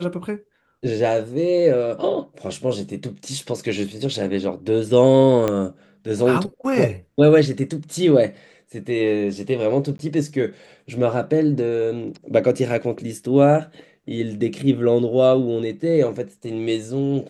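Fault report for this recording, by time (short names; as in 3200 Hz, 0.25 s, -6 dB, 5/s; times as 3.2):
5.48 pop -9 dBFS
9.98–9.99 gap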